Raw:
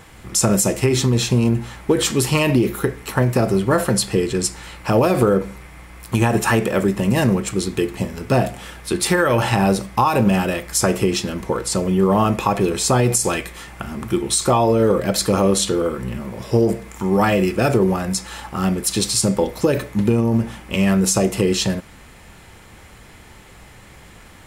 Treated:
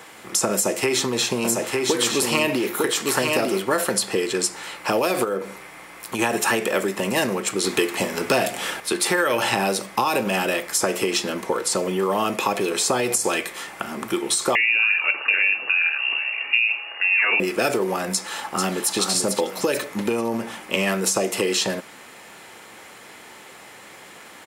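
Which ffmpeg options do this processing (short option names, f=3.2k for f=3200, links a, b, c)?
-filter_complex "[0:a]asettb=1/sr,asplit=3[a][b][c];[a]atrim=end=0.544[d];[b]atrim=start=0.54:end=3.62,asetpts=PTS-STARTPTS,afade=t=in:d=0.004:c=qsin,afade=t=out:st=3.076:d=0.004:c=qsin,aecho=1:1:903:0.596,atrim=end_sample=135828[e];[c]atrim=start=3.616[f];[d][e]acrossfade=d=0.004:c1=hsin:c2=qsin[g];[g][f]acrossfade=d=0.004:c1=qsin:c2=hsin,asettb=1/sr,asplit=3[h][i][j];[h]atrim=end=5.244[k];[i]atrim=start=5.24:end=6.19,asetpts=PTS-STARTPTS,afade=t=in:d=0.004:c=qsin,afade=t=out:st=0.946:d=0.004:c=qsin,acompressor=threshold=-28dB:ratio=1.5:attack=3.2:release=140:knee=1:detection=peak[l];[j]atrim=start=6.186[m];[k][l]acrossfade=d=0.004:c1=hsin:c2=qsin[n];[n][m]acrossfade=d=0.004:c1=qsin:c2=hsin,asettb=1/sr,asplit=3[o][p][q];[o]atrim=end=7.644[r];[p]atrim=start=7.64:end=8.8,asetpts=PTS-STARTPTS,afade=t=in:d=0.004:c=qsin,afade=t=out:st=1.156:d=0.004:c=qsin,acontrast=61[s];[q]atrim=start=8.796[t];[r][s]acrossfade=d=0.004:c1=hsin:c2=qsin[u];[u][t]acrossfade=d=0.004:c1=qsin:c2=hsin,asettb=1/sr,asplit=3[v][w][x];[v]atrim=end=14.554[y];[w]atrim=start=14.55:end=17.4,asetpts=PTS-STARTPTS,afade=t=in:d=0.004:c=qsin,afade=t=out:st=2.846:d=0.004:c=qsin,lowpass=f=2.5k:t=q:w=0.5098,lowpass=f=2.5k:t=q:w=0.6013,lowpass=f=2.5k:t=q:w=0.9,lowpass=f=2.5k:t=q:w=2.563,afreqshift=-2900[z];[x]atrim=start=17.396[aa];[y][z]acrossfade=d=0.004:c1=hsin:c2=qsin[ab];[ab][aa]acrossfade=d=0.004:c1=qsin:c2=hsin,asplit=2[ac][ad];[ad]afade=t=in:st=18.12:d=0.01,afade=t=out:st=18.96:d=0.01,aecho=0:1:440|880|1320|1760:0.421697|0.126509|0.0379527|0.0113858[ae];[ac][ae]amix=inputs=2:normalize=0,highpass=330,acrossover=split=580|1800[af][ag][ah];[af]acompressor=threshold=-27dB:ratio=4[ai];[ag]acompressor=threshold=-30dB:ratio=4[aj];[ah]acompressor=threshold=-24dB:ratio=4[ak];[ai][aj][ak]amix=inputs=3:normalize=0,volume=3.5dB"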